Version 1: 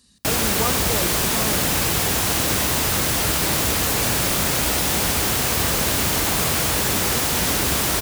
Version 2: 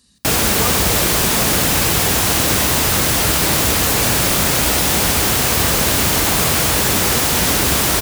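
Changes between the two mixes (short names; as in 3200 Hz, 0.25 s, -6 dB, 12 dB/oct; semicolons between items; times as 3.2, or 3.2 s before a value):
speech: send +6.5 dB; background +5.0 dB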